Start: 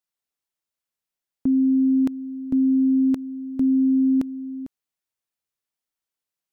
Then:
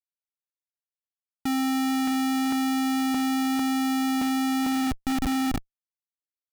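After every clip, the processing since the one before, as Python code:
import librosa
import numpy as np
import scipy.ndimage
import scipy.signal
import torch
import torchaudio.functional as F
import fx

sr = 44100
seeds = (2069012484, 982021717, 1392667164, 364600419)

y = fx.echo_diffused(x, sr, ms=535, feedback_pct=48, wet_db=-12.5)
y = fx.env_lowpass(y, sr, base_hz=550.0, full_db=-19.0)
y = fx.schmitt(y, sr, flips_db=-35.5)
y = y * 10.0 ** (-1.5 / 20.0)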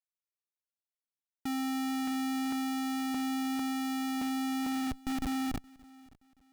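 y = fx.echo_feedback(x, sr, ms=573, feedback_pct=36, wet_db=-24.0)
y = y * 10.0 ** (-8.0 / 20.0)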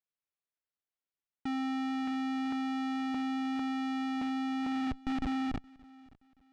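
y = scipy.signal.sosfilt(scipy.signal.butter(2, 3400.0, 'lowpass', fs=sr, output='sos'), x)
y = fx.rider(y, sr, range_db=10, speed_s=0.5)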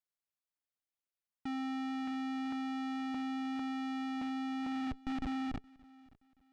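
y = fx.notch(x, sr, hz=420.0, q=12.0)
y = y * 10.0 ** (-4.0 / 20.0)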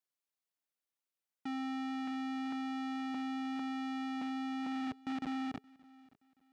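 y = scipy.signal.sosfilt(scipy.signal.butter(2, 180.0, 'highpass', fs=sr, output='sos'), x)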